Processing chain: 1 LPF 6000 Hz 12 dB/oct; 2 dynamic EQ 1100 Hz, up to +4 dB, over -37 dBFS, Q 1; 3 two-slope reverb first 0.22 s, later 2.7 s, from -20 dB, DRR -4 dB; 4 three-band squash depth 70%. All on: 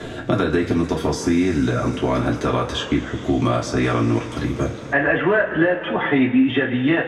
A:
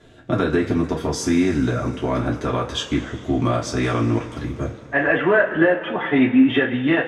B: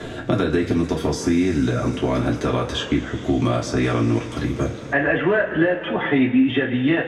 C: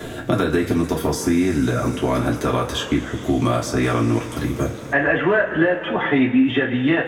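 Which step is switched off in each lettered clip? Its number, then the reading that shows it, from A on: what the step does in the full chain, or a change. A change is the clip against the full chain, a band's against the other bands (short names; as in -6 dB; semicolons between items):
4, momentary loudness spread change +3 LU; 2, 1 kHz band -2.5 dB; 1, 8 kHz band +3.5 dB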